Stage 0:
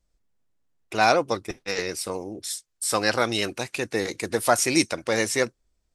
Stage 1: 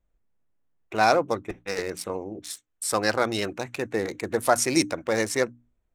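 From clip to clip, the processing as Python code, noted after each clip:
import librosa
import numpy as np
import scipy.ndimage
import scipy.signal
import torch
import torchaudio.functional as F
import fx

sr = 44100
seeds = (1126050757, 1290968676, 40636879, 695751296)

y = fx.wiener(x, sr, points=9)
y = fx.hum_notches(y, sr, base_hz=60, count=5)
y = fx.dynamic_eq(y, sr, hz=2900.0, q=1.5, threshold_db=-42.0, ratio=4.0, max_db=-5)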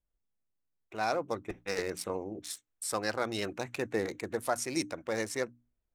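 y = fx.rider(x, sr, range_db=4, speed_s=0.5)
y = y * librosa.db_to_amplitude(-8.0)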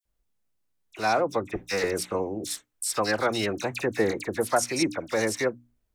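y = fx.dispersion(x, sr, late='lows', ms=53.0, hz=2400.0)
y = y * librosa.db_to_amplitude(7.5)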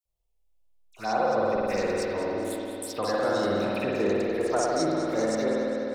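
y = fx.env_phaser(x, sr, low_hz=260.0, high_hz=2500.0, full_db=-24.0)
y = fx.echo_feedback(y, sr, ms=204, feedback_pct=51, wet_db=-12.0)
y = fx.rev_spring(y, sr, rt60_s=3.2, pass_ms=(50,), chirp_ms=45, drr_db=-5.5)
y = y * librosa.db_to_amplitude(-4.5)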